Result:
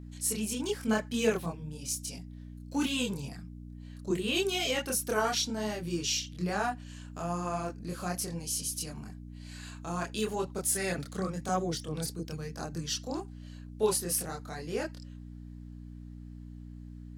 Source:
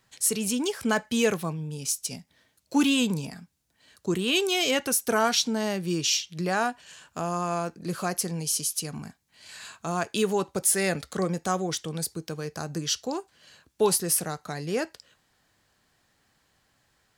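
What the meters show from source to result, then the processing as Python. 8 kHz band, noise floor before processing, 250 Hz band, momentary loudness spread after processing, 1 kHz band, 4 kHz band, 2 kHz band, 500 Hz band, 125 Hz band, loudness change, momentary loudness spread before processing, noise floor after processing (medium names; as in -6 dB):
-6.0 dB, -70 dBFS, -5.5 dB, 18 LU, -5.5 dB, -6.0 dB, -6.0 dB, -5.0 dB, -3.5 dB, -5.5 dB, 13 LU, -46 dBFS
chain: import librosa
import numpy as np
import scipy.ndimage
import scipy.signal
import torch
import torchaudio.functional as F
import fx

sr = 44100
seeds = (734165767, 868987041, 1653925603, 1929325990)

y = fx.chorus_voices(x, sr, voices=4, hz=0.94, base_ms=26, depth_ms=3.0, mix_pct=50)
y = fx.dmg_buzz(y, sr, base_hz=60.0, harmonics=5, level_db=-42.0, tilt_db=-4, odd_only=False)
y = y * 10.0 ** (-3.0 / 20.0)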